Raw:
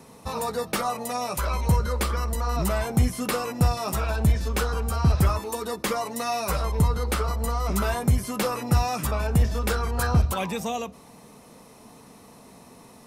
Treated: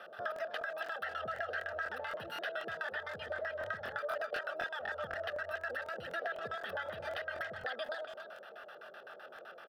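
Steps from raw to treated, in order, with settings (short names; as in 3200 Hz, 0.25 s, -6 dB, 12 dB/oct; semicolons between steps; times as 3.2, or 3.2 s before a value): limiter -20 dBFS, peak gain reduction 7.5 dB; low shelf 340 Hz -6 dB; LFO low-pass square 5.8 Hz 350–1600 Hz; tone controls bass -11 dB, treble +12 dB; compressor 8:1, threshold -37 dBFS, peak gain reduction 13 dB; fixed phaser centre 1100 Hz, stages 8; speakerphone echo 0.38 s, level -8 dB; speed mistake 33 rpm record played at 45 rpm; HPF 190 Hz 12 dB/oct; crackling interface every 0.25 s, samples 1024, repeat, from 0.34; gain +3.5 dB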